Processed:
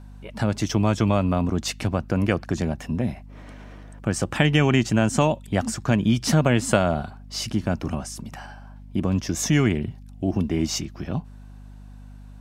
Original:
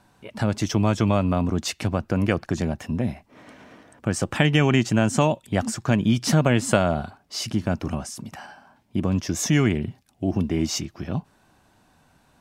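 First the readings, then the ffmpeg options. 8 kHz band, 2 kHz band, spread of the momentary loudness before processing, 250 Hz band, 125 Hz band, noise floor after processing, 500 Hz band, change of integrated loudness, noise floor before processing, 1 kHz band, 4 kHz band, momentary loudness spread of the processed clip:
0.0 dB, 0.0 dB, 12 LU, 0.0 dB, 0.0 dB, −42 dBFS, 0.0 dB, 0.0 dB, −61 dBFS, 0.0 dB, 0.0 dB, 13 LU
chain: -af "aeval=exprs='val(0)+0.00891*(sin(2*PI*50*n/s)+sin(2*PI*2*50*n/s)/2+sin(2*PI*3*50*n/s)/3+sin(2*PI*4*50*n/s)/4+sin(2*PI*5*50*n/s)/5)':channel_layout=same"

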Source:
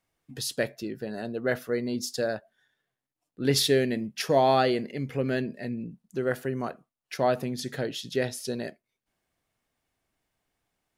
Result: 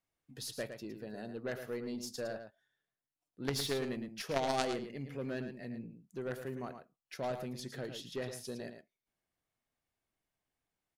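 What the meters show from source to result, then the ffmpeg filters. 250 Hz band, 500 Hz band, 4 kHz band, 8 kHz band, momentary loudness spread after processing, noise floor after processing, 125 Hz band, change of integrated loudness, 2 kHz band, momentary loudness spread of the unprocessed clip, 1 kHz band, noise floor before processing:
−11.0 dB, −12.0 dB, −10.5 dB, −10.5 dB, 12 LU, below −85 dBFS, −11.0 dB, −11.5 dB, −11.0 dB, 13 LU, −12.0 dB, below −85 dBFS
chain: -filter_complex "[0:a]aeval=exprs='0.316*(cos(1*acos(clip(val(0)/0.316,-1,1)))-cos(1*PI/2))+0.141*(cos(3*acos(clip(val(0)/0.316,-1,1)))-cos(3*PI/2))+0.0562*(cos(5*acos(clip(val(0)/0.316,-1,1)))-cos(5*PI/2))+0.00316*(cos(8*acos(clip(val(0)/0.316,-1,1)))-cos(8*PI/2))':channel_layout=same,asplit=2[link_01][link_02];[link_02]adelay=110.8,volume=-8dB,highshelf=frequency=4000:gain=-2.49[link_03];[link_01][link_03]amix=inputs=2:normalize=0,volume=-5dB"

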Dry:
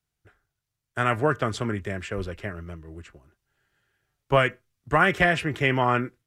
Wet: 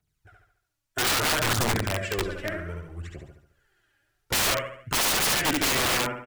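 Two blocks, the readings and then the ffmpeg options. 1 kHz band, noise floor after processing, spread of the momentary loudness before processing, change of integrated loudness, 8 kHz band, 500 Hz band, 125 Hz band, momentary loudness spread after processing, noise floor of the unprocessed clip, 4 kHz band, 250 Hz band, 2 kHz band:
−3.5 dB, −79 dBFS, 16 LU, 0.0 dB, +20.0 dB, −5.0 dB, −3.5 dB, 15 LU, −84 dBFS, +10.0 dB, −3.0 dB, −2.0 dB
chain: -af "aphaser=in_gain=1:out_gain=1:delay=3.7:decay=0.7:speed=0.63:type=triangular,aecho=1:1:71|142|213|284|355|426:0.668|0.307|0.141|0.0651|0.0299|0.0138,aeval=exprs='(mod(7.08*val(0)+1,2)-1)/7.08':channel_layout=same,volume=-1.5dB"

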